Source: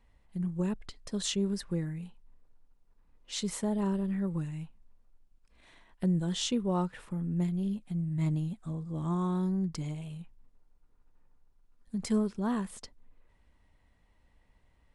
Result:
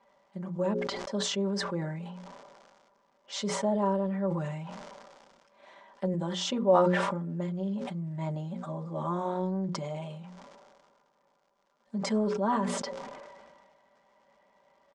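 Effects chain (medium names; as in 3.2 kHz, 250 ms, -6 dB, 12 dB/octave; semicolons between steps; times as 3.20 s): hum notches 60/120/180/240/300/360/420/480/540 Hz; comb 5.1 ms, depth 79%; crackle 220 per s -59 dBFS; treble shelf 3.5 kHz -9.5 dB; in parallel at +0.5 dB: peak limiter -26.5 dBFS, peak gain reduction 11 dB; on the sum: cabinet simulation 330–6800 Hz, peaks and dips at 390 Hz -5 dB, 560 Hz +9 dB, 930 Hz +5 dB, 1.8 kHz -3 dB, 2.6 kHz -6 dB, 4 kHz -4 dB; decay stretcher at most 31 dB/s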